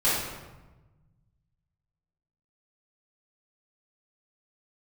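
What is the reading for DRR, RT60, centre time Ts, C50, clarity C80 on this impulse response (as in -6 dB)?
-12.5 dB, 1.2 s, 77 ms, -0.5 dB, 3.0 dB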